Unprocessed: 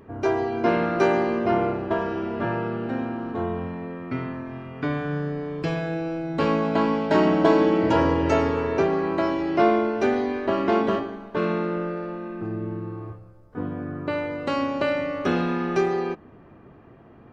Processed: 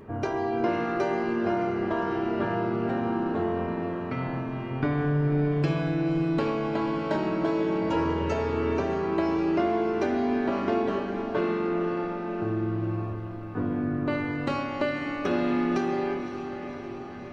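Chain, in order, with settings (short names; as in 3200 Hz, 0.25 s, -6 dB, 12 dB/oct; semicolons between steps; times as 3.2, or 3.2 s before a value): compressor, threshold -27 dBFS, peak gain reduction 13.5 dB; 4.7–5.52 tilt -1.5 dB/oct; diffused feedback echo 0.557 s, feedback 65%, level -9.5 dB; reverb RT60 0.95 s, pre-delay 5 ms, DRR 5.5 dB; gain +1.5 dB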